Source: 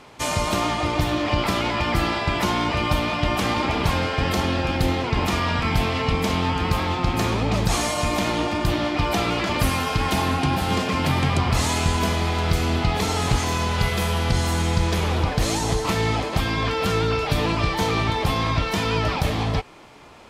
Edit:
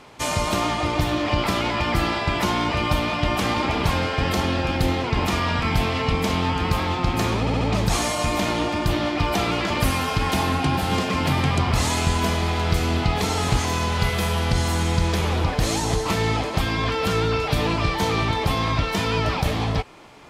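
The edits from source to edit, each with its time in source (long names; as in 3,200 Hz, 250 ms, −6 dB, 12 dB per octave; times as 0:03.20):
0:07.40: stutter 0.07 s, 4 plays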